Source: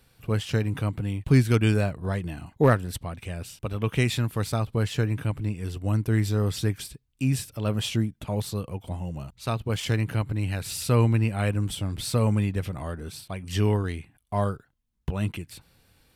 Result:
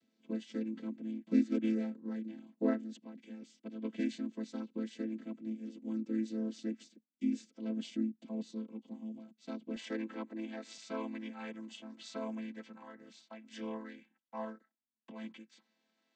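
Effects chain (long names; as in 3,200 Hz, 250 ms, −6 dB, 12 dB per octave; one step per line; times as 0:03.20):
channel vocoder with a chord as carrier minor triad, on A3
parametric band 930 Hz −13 dB 2.4 octaves, from 0:09.76 84 Hz, from 0:10.78 310 Hz
level −7 dB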